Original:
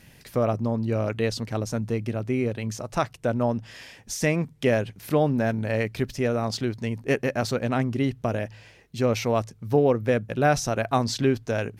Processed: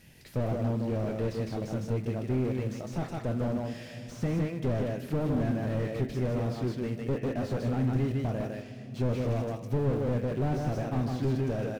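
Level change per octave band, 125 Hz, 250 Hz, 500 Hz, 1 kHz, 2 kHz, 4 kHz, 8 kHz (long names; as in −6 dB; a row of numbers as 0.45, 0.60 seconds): −1.5 dB, −4.0 dB, −8.0 dB, −10.5 dB, −13.0 dB, −12.5 dB, below −15 dB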